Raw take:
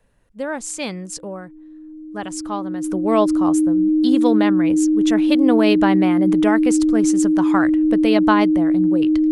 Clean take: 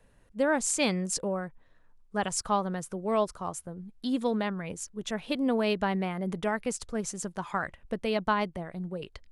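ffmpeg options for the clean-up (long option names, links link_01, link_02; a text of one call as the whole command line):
ffmpeg -i in.wav -af "bandreject=frequency=310:width=30,asetnsamples=nb_out_samples=441:pad=0,asendcmd='2.84 volume volume -9.5dB',volume=0dB" out.wav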